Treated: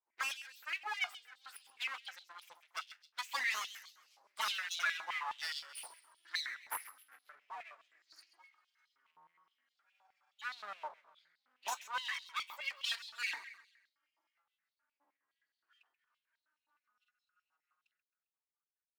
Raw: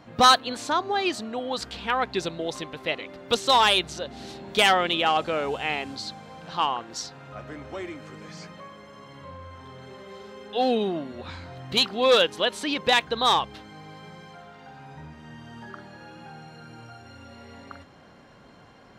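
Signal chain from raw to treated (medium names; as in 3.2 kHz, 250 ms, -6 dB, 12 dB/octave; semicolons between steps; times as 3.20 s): expander on every frequency bin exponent 2; Doppler pass-by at 6.77 s, 14 m/s, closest 18 m; dynamic bell 3.8 kHz, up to -7 dB, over -52 dBFS, Q 2.8; compression 6:1, threshold -39 dBFS, peak gain reduction 13 dB; flange 0.27 Hz, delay 9.5 ms, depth 2.1 ms, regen +67%; wow and flutter 25 cents; full-wave rectifier; on a send: feedback delay 133 ms, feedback 40%, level -14 dB; on the sum: step-sequenced high-pass 9.6 Hz 920–4000 Hz; trim +10.5 dB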